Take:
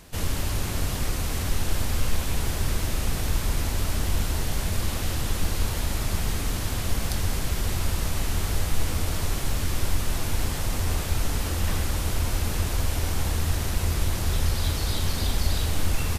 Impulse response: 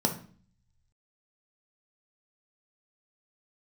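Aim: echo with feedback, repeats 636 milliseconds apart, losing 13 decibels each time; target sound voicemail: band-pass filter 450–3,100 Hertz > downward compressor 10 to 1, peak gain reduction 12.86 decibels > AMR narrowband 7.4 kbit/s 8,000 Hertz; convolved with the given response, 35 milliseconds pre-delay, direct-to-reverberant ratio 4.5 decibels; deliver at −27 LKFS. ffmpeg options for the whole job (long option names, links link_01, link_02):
-filter_complex "[0:a]aecho=1:1:636|1272|1908:0.224|0.0493|0.0108,asplit=2[link_01][link_02];[1:a]atrim=start_sample=2205,adelay=35[link_03];[link_02][link_03]afir=irnorm=-1:irlink=0,volume=-13.5dB[link_04];[link_01][link_04]amix=inputs=2:normalize=0,highpass=450,lowpass=3100,acompressor=threshold=-43dB:ratio=10,volume=22.5dB" -ar 8000 -c:a libopencore_amrnb -b:a 7400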